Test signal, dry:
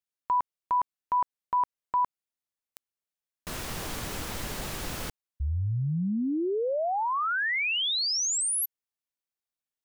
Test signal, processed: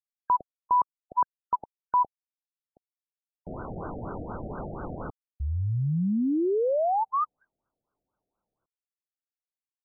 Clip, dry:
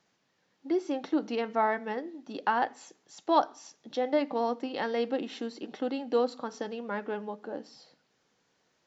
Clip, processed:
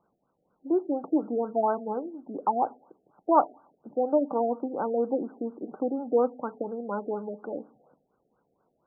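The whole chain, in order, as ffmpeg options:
-af "lowshelf=f=65:g=-9,acrusher=bits=11:mix=0:aa=0.000001,afftfilt=real='re*lt(b*sr/1024,740*pow(1600/740,0.5+0.5*sin(2*PI*4.2*pts/sr)))':imag='im*lt(b*sr/1024,740*pow(1600/740,0.5+0.5*sin(2*PI*4.2*pts/sr)))':win_size=1024:overlap=0.75,volume=1.5"

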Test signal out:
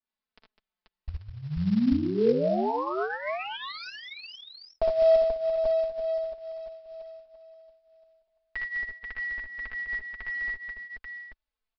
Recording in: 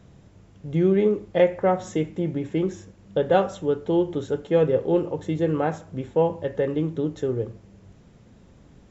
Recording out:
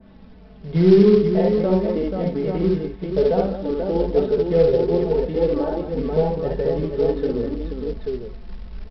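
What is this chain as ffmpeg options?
-filter_complex "[0:a]acrossover=split=630[s0][s1];[s1]acompressor=threshold=0.00708:ratio=4[s2];[s0][s2]amix=inputs=2:normalize=0,lowpass=f=3000:p=1,aecho=1:1:4.6:0.6,acontrast=22,aecho=1:1:47|60|76|204|485|837:0.119|0.668|0.531|0.316|0.562|0.501,flanger=delay=3.4:depth=2.3:regen=-22:speed=0.53:shape=sinusoidal,asubboost=boost=10.5:cutoff=51,aresample=11025,acrusher=bits=6:mode=log:mix=0:aa=0.000001,aresample=44100,adynamicequalizer=threshold=0.00891:dfrequency=1700:dqfactor=0.7:tfrequency=1700:tqfactor=0.7:attack=5:release=100:ratio=0.375:range=1.5:mode=cutabove:tftype=highshelf,volume=1.19"

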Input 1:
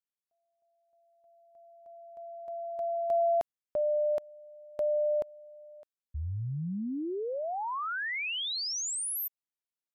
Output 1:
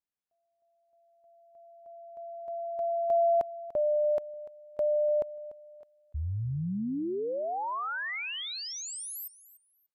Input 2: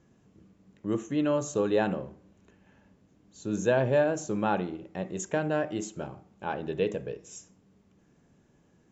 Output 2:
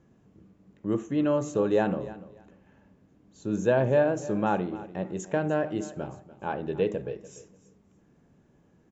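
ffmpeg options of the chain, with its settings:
-af "highshelf=f=2400:g=-8,aecho=1:1:293|586:0.141|0.0283,volume=1.26"

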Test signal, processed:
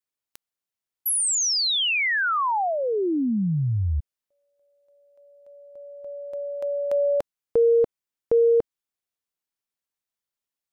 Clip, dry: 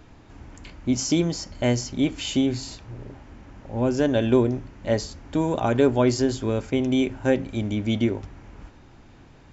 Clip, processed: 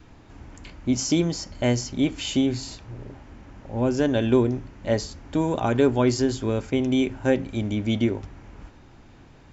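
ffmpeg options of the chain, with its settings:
-af "adynamicequalizer=threshold=0.0158:dfrequency=600:dqfactor=3.2:tfrequency=600:tqfactor=3.2:attack=5:release=100:ratio=0.375:range=2.5:mode=cutabove:tftype=bell"

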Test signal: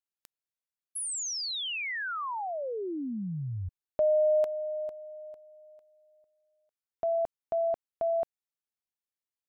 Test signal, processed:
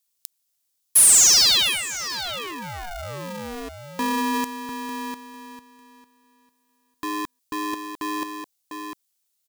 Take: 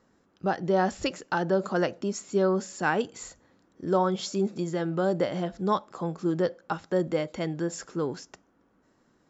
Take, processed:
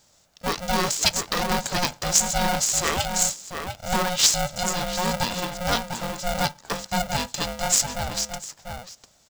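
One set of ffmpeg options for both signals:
-filter_complex "[0:a]asplit=2[s0][s1];[s1]adelay=699.7,volume=0.501,highshelf=f=4000:g=-15.7[s2];[s0][s2]amix=inputs=2:normalize=0,aexciter=amount=7.5:drive=5.8:freq=3000,aeval=exprs='val(0)*sgn(sin(2*PI*360*n/s))':c=same"

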